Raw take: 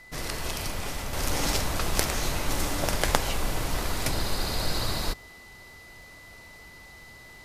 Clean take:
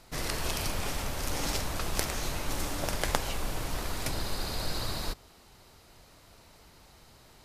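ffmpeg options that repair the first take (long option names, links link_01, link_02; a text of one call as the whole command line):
ffmpeg -i in.wav -af "adeclick=threshold=4,bandreject=frequency=2000:width=30,asetnsamples=nb_out_samples=441:pad=0,asendcmd='1.13 volume volume -5dB',volume=0dB" out.wav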